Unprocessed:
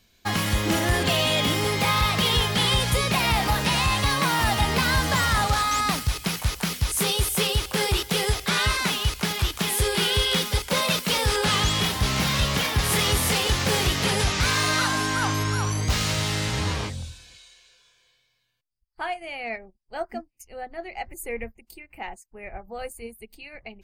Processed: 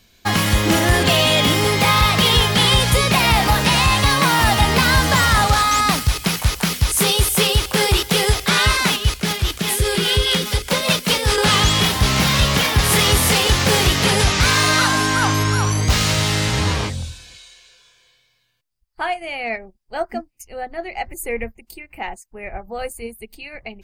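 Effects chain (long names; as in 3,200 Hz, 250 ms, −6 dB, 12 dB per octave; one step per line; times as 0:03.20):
0:08.96–0:11.38: rotating-speaker cabinet horn 5 Hz
level +7 dB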